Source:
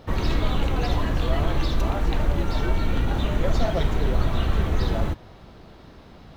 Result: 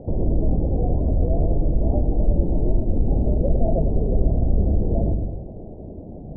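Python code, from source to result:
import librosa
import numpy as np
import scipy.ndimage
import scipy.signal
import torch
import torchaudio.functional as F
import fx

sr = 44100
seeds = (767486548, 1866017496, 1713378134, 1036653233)

p1 = scipy.signal.sosfilt(scipy.signal.butter(8, 700.0, 'lowpass', fs=sr, output='sos'), x)
p2 = fx.hum_notches(p1, sr, base_hz=50, count=2)
p3 = fx.over_compress(p2, sr, threshold_db=-31.0, ratio=-1.0)
p4 = p2 + (p3 * 10.0 ** (-3.0 / 20.0))
y = fx.echo_wet_lowpass(p4, sr, ms=106, feedback_pct=53, hz=470.0, wet_db=-4.0)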